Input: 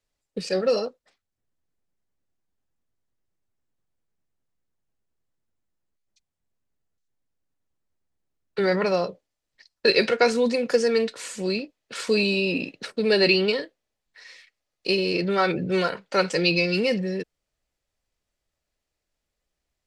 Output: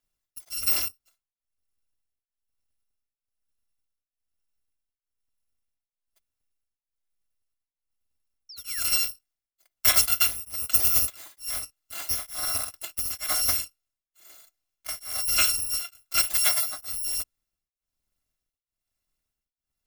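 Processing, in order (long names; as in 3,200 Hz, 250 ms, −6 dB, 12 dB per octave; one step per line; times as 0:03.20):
samples in bit-reversed order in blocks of 256 samples
sound drawn into the spectrogram fall, 0:08.49–0:08.81, 1,500–5,700 Hz −35 dBFS
tremolo along a rectified sine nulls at 1.1 Hz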